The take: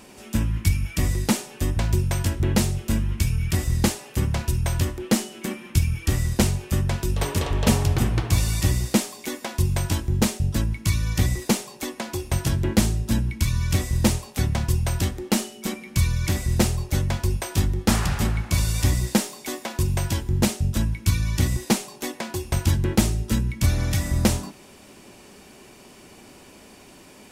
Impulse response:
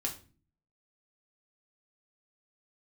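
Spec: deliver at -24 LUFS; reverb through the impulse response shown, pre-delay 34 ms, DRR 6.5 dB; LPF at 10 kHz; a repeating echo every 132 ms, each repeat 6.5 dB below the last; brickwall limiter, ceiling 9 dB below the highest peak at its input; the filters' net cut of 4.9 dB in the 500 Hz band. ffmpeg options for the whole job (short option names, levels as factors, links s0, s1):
-filter_complex "[0:a]lowpass=10000,equalizer=f=500:t=o:g=-7,alimiter=limit=0.211:level=0:latency=1,aecho=1:1:132|264|396|528|660|792:0.473|0.222|0.105|0.0491|0.0231|0.0109,asplit=2[s0][s1];[1:a]atrim=start_sample=2205,adelay=34[s2];[s1][s2]afir=irnorm=-1:irlink=0,volume=0.376[s3];[s0][s3]amix=inputs=2:normalize=0,volume=0.944"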